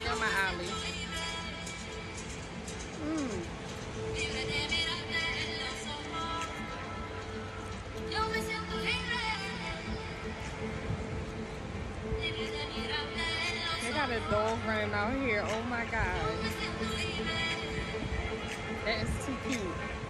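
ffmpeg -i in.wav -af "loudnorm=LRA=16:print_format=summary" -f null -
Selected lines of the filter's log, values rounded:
Input Integrated:    -34.2 LUFS
Input True Peak:     -17.7 dBTP
Input LRA:             4.8 LU
Input Threshold:     -44.2 LUFS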